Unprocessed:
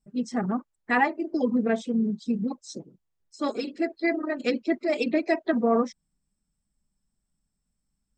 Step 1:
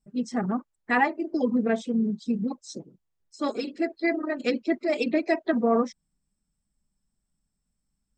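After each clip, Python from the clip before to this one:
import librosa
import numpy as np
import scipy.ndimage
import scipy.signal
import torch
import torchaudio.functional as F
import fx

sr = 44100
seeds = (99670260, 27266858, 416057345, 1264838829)

y = x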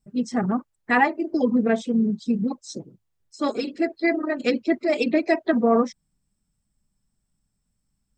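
y = fx.peak_eq(x, sr, hz=110.0, db=9.0, octaves=0.41)
y = F.gain(torch.from_numpy(y), 3.5).numpy()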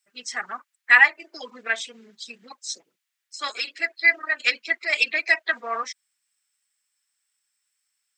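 y = fx.highpass_res(x, sr, hz=1900.0, q=1.5)
y = F.gain(torch.from_numpy(y), 6.5).numpy()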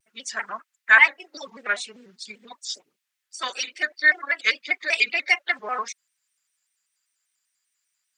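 y = fx.vibrato_shape(x, sr, shape='square', rate_hz=5.1, depth_cents=160.0)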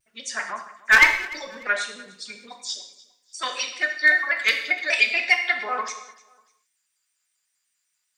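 y = np.minimum(x, 2.0 * 10.0 ** (-7.5 / 20.0) - x)
y = fx.echo_feedback(y, sr, ms=297, feedback_pct=30, wet_db=-21)
y = fx.rev_gated(y, sr, seeds[0], gate_ms=240, shape='falling', drr_db=4.0)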